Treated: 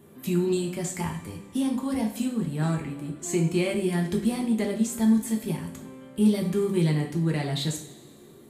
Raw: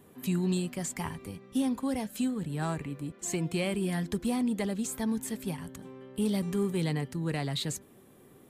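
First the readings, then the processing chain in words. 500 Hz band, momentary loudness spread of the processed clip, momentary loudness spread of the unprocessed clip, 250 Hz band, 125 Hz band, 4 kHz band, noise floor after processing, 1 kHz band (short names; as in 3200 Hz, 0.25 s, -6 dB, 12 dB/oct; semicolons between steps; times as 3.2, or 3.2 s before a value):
+6.5 dB, 11 LU, 8 LU, +6.0 dB, +5.5 dB, +2.5 dB, -50 dBFS, +2.5 dB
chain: bell 270 Hz +5 dB 1.1 oct; two-slope reverb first 0.42 s, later 2.1 s, from -18 dB, DRR 0.5 dB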